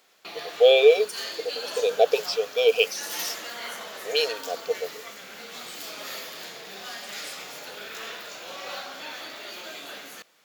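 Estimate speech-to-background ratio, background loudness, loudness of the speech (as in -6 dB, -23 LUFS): 13.5 dB, -36.0 LUFS, -22.5 LUFS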